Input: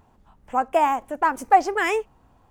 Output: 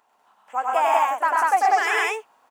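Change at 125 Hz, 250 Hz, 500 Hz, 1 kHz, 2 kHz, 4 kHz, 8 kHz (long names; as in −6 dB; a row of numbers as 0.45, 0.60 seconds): can't be measured, −12.0 dB, −2.0 dB, +1.5 dB, +4.0 dB, +4.5 dB, +4.0 dB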